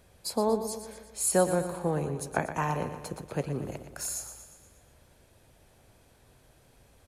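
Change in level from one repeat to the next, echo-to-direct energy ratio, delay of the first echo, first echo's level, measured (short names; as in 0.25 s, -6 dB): -5.0 dB, -8.5 dB, 0.119 s, -10.0 dB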